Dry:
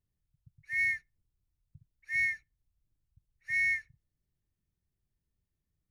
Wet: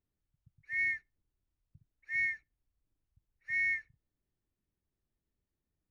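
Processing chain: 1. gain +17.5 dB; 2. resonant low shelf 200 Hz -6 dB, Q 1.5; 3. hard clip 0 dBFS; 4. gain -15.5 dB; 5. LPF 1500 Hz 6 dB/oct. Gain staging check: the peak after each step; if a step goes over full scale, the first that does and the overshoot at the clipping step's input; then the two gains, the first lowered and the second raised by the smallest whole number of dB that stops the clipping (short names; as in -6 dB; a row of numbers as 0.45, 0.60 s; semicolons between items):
-4.0, -4.0, -4.0, -19.5, -24.0 dBFS; no overload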